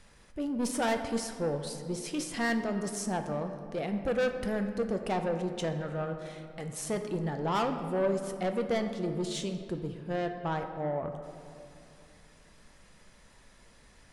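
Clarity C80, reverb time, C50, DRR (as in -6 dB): 8.5 dB, 2.7 s, 7.5 dB, 5.5 dB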